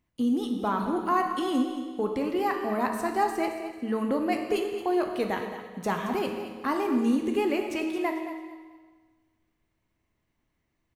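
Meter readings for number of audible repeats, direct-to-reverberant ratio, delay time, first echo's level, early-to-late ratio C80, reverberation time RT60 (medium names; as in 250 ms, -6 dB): 3, 2.5 dB, 222 ms, -11.5 dB, 6.0 dB, 1.5 s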